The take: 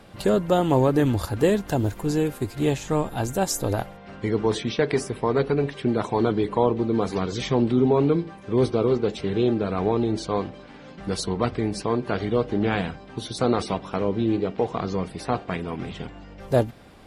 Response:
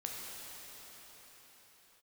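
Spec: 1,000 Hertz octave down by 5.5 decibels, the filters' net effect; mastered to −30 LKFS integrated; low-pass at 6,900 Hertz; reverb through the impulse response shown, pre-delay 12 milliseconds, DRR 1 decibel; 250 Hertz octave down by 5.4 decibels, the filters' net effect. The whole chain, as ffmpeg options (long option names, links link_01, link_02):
-filter_complex "[0:a]lowpass=6900,equalizer=frequency=250:width_type=o:gain=-7,equalizer=frequency=1000:width_type=o:gain=-7,asplit=2[link_01][link_02];[1:a]atrim=start_sample=2205,adelay=12[link_03];[link_02][link_03]afir=irnorm=-1:irlink=0,volume=-2.5dB[link_04];[link_01][link_04]amix=inputs=2:normalize=0,volume=-4dB"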